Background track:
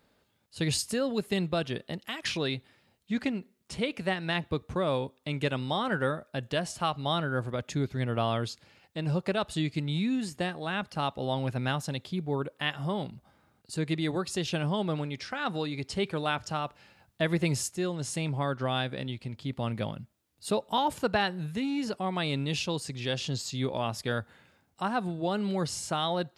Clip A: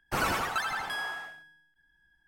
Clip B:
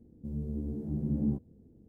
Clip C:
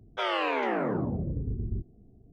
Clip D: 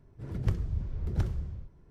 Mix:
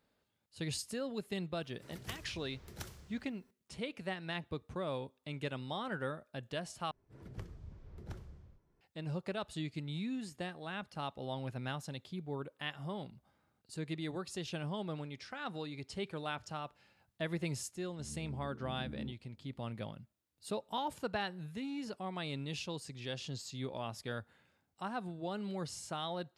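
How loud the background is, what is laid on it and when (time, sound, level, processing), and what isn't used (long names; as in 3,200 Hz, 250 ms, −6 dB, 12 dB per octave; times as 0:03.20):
background track −10 dB
0:01.61: mix in D −5.5 dB + spectral tilt +4.5 dB per octave
0:06.91: overwrite with D −9.5 dB + low-shelf EQ 190 Hz −10.5 dB
0:17.75: mix in B −14 dB
not used: A, C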